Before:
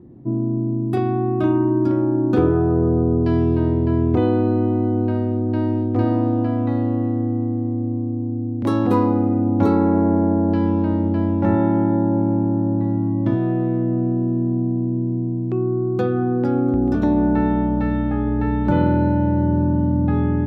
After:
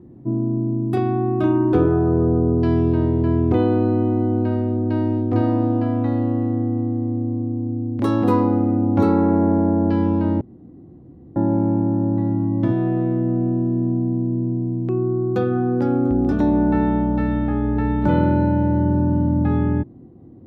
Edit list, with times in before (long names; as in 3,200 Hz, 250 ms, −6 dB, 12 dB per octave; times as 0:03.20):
0:01.73–0:02.36: remove
0:11.04–0:11.99: fill with room tone